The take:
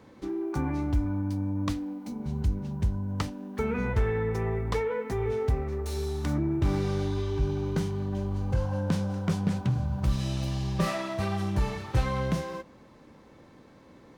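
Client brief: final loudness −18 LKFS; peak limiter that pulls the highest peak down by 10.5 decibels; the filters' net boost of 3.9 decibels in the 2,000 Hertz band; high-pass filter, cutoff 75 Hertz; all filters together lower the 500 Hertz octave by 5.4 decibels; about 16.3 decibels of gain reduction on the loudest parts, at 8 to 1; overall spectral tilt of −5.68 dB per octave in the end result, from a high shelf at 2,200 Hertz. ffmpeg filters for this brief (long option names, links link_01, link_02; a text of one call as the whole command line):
ffmpeg -i in.wav -af "highpass=75,equalizer=frequency=500:width_type=o:gain=-7,equalizer=frequency=2000:width_type=o:gain=8,highshelf=frequency=2200:gain=-5.5,acompressor=threshold=-40dB:ratio=8,volume=28.5dB,alimiter=limit=-9.5dB:level=0:latency=1" out.wav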